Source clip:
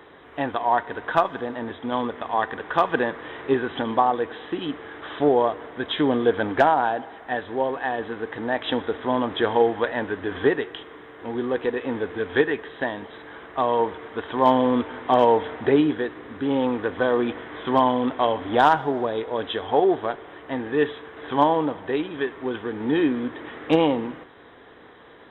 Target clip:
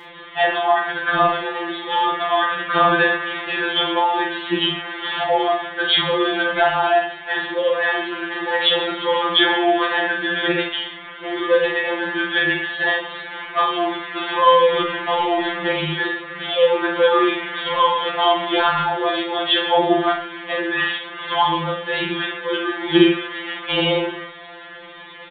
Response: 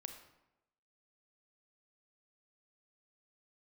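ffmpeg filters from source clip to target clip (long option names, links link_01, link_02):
-filter_complex "[0:a]asettb=1/sr,asplit=3[link_01][link_02][link_03];[link_01]atrim=end=14.744[link_04];[link_02]atrim=start=14.74:end=15.84,asetpts=PTS-STARTPTS,afade=type=in:duration=0.004:curve=qsin,afade=type=out:start_time=1.096:duration=0.004:curve=qsin,lowshelf=frequency=350:gain=7.5[link_05];[link_03]atrim=start=15.836[link_06];[link_04][link_05]acrossfade=duration=0.004:curve1=hsin:curve2=qsin[link_07];[link_07][link_06]acrossfade=duration=0.004:curve1=qsin:curve2=hsin[link_08];[1:a]atrim=start_sample=2205,atrim=end_sample=3087,asetrate=24696,aresample=44100[link_09];[link_08][link_09]afir=irnorm=-1:irlink=0,crystalizer=i=9.5:c=0,asettb=1/sr,asplit=3[link_10][link_11][link_12];[link_10]atrim=end=23.124[link_13];[link_11]atrim=start=23.12:end=23.82,asetpts=PTS-STARTPTS,afade=type=in:duration=0.004:curve=qsin,afade=type=out:start_time=0.696:duration=0.004:curve=qsin,equalizer=frequency=220:width_type=o:width=2.4:gain=-6.5[link_14];[link_12]atrim=start=23.816[link_15];[link_13][link_14]acrossfade=duration=0.004:curve1=hsin:curve2=qsin[link_16];[link_16][link_15]acrossfade=duration=0.004:curve1=qsin:curve2=hsin,alimiter=limit=-9.5dB:level=0:latency=1:release=83,aresample=8000,aresample=44100,aecho=1:1:39|77:0.631|0.224,afftfilt=real='re*2.83*eq(mod(b,8),0)':imag='im*2.83*eq(mod(b,8),0)':win_size=2048:overlap=0.75,volume=6dB"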